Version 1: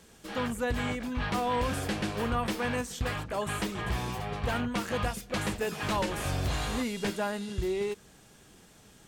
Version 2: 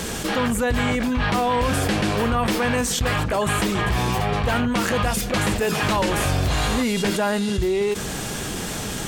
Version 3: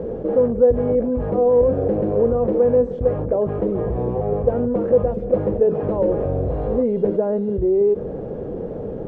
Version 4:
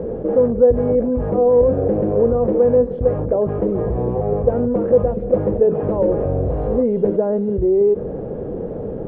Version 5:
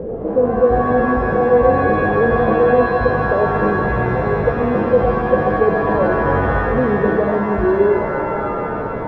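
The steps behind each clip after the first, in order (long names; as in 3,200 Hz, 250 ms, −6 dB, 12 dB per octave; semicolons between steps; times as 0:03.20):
envelope flattener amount 70%; level +7 dB
low-pass with resonance 500 Hz, resonance Q 4.9; level −2.5 dB
high-frequency loss of the air 240 metres; level +2.5 dB
reverb with rising layers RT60 2.9 s, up +7 semitones, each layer −2 dB, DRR 4.5 dB; level −1 dB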